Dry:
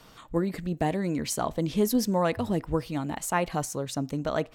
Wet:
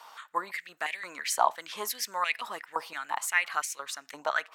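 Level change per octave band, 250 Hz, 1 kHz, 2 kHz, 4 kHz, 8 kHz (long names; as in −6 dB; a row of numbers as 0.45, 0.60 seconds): −26.0, +2.0, +7.5, +2.0, +0.5 decibels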